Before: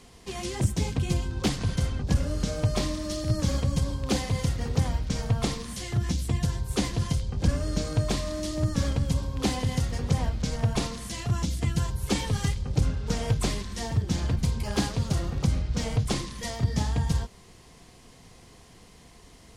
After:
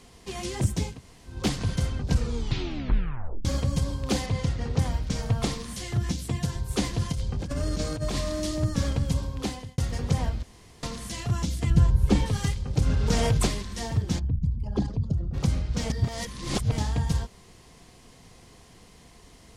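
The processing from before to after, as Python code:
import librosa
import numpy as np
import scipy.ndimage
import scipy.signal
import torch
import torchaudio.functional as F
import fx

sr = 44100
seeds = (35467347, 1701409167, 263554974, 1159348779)

y = fx.air_absorb(x, sr, metres=67.0, at=(4.26, 4.79))
y = fx.highpass(y, sr, hz=93.0, slope=12, at=(6.12, 6.56))
y = fx.over_compress(y, sr, threshold_db=-28.0, ratio=-1.0, at=(7.11, 8.56), fade=0.02)
y = fx.tilt_eq(y, sr, slope=-2.5, at=(11.7, 12.26))
y = fx.env_flatten(y, sr, amount_pct=70, at=(12.86, 13.47))
y = fx.envelope_sharpen(y, sr, power=2.0, at=(14.18, 15.33), fade=0.02)
y = fx.edit(y, sr, fx.room_tone_fill(start_s=0.9, length_s=0.45, crossfade_s=0.24),
    fx.tape_stop(start_s=2.04, length_s=1.41),
    fx.fade_out_span(start_s=9.25, length_s=0.53),
    fx.room_tone_fill(start_s=10.43, length_s=0.4),
    fx.reverse_span(start_s=15.9, length_s=0.88), tone=tone)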